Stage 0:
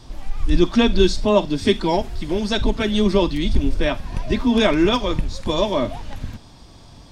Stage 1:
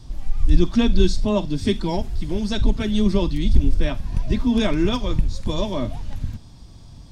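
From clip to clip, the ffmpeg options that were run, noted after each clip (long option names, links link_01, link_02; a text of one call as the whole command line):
ffmpeg -i in.wav -af "bass=frequency=250:gain=11,treble=frequency=4000:gain=5,volume=-7.5dB" out.wav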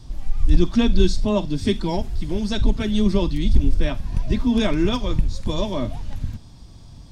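ffmpeg -i in.wav -af "volume=4.5dB,asoftclip=hard,volume=-4.5dB" out.wav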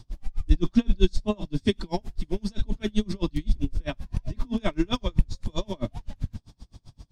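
ffmpeg -i in.wav -af "aeval=exprs='val(0)*pow(10,-34*(0.5-0.5*cos(2*PI*7.7*n/s))/20)':channel_layout=same" out.wav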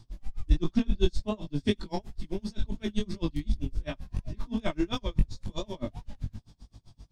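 ffmpeg -i in.wav -af "aeval=exprs='0.596*(cos(1*acos(clip(val(0)/0.596,-1,1)))-cos(1*PI/2))+0.015*(cos(7*acos(clip(val(0)/0.596,-1,1)))-cos(7*PI/2))':channel_layout=same,flanger=delay=18:depth=3:speed=2.8" out.wav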